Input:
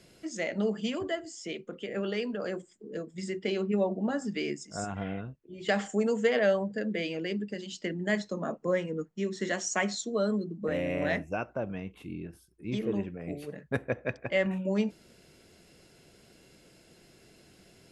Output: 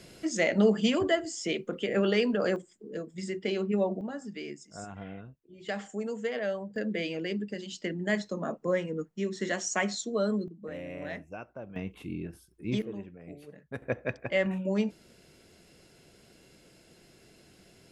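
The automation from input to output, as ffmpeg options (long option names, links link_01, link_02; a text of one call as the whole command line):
ffmpeg -i in.wav -af "asetnsamples=nb_out_samples=441:pad=0,asendcmd='2.56 volume volume 0dB;4.01 volume volume -7dB;6.76 volume volume 0dB;10.48 volume volume -9dB;11.76 volume volume 2.5dB;12.82 volume volume -8.5dB;13.82 volume volume 0dB',volume=6.5dB" out.wav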